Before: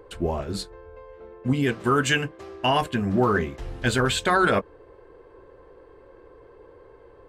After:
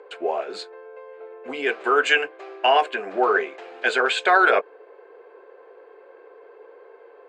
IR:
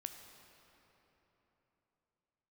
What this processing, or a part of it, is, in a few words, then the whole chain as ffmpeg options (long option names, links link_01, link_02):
phone speaker on a table: -af "highpass=frequency=400:width=0.5412,highpass=frequency=400:width=1.3066,equalizer=frequency=430:width_type=q:width=4:gain=6,equalizer=frequency=720:width_type=q:width=4:gain=8,equalizer=frequency=1500:width_type=q:width=4:gain=6,equalizer=frequency=2400:width_type=q:width=4:gain=8,equalizer=frequency=5700:width_type=q:width=4:gain=-9,lowpass=frequency=6800:width=0.5412,lowpass=frequency=6800:width=1.3066"